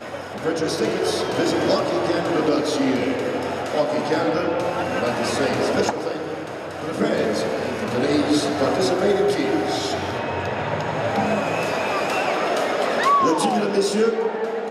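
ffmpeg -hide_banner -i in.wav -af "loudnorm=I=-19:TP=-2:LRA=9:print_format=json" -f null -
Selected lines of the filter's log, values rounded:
"input_i" : "-21.5",
"input_tp" : "-8.6",
"input_lra" : "2.8",
"input_thresh" : "-31.6",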